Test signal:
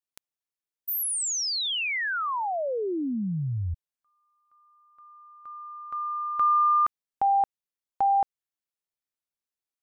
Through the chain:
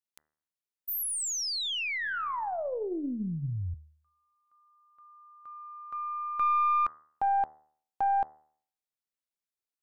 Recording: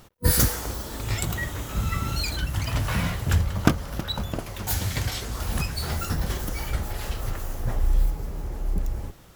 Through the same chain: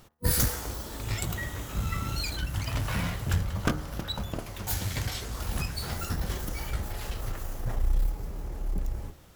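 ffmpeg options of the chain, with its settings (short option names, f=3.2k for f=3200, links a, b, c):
-af "bandreject=f=76.52:t=h:w=4,bandreject=f=153.04:t=h:w=4,bandreject=f=229.56:t=h:w=4,bandreject=f=306.08:t=h:w=4,bandreject=f=382.6:t=h:w=4,bandreject=f=459.12:t=h:w=4,bandreject=f=535.64:t=h:w=4,bandreject=f=612.16:t=h:w=4,bandreject=f=688.68:t=h:w=4,bandreject=f=765.2:t=h:w=4,bandreject=f=841.72:t=h:w=4,bandreject=f=918.24:t=h:w=4,bandreject=f=994.76:t=h:w=4,bandreject=f=1.07128k:t=h:w=4,bandreject=f=1.1478k:t=h:w=4,bandreject=f=1.22432k:t=h:w=4,bandreject=f=1.30084k:t=h:w=4,bandreject=f=1.37736k:t=h:w=4,bandreject=f=1.45388k:t=h:w=4,bandreject=f=1.5304k:t=h:w=4,bandreject=f=1.60692k:t=h:w=4,bandreject=f=1.68344k:t=h:w=4,bandreject=f=1.75996k:t=h:w=4,bandreject=f=1.83648k:t=h:w=4,bandreject=f=1.913k:t=h:w=4,bandreject=f=1.98952k:t=h:w=4,aeval=exprs='(tanh(3.98*val(0)+0.4)-tanh(0.4))/3.98':c=same,volume=-2.5dB"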